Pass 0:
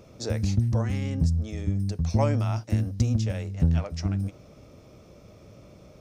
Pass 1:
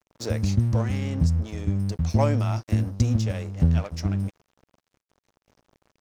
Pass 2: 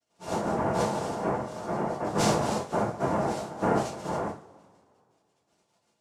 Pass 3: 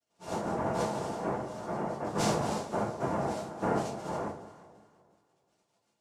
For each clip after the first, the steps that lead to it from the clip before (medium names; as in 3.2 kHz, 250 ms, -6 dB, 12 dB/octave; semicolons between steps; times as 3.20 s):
crossover distortion -43.5 dBFS; trim +2.5 dB
frequency axis rescaled in octaves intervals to 125%; noise-vocoded speech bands 2; two-slope reverb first 0.32 s, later 2.4 s, from -27 dB, DRR -6 dB; trim -6 dB
echo whose repeats swap between lows and highs 175 ms, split 930 Hz, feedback 56%, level -11.5 dB; trim -4.5 dB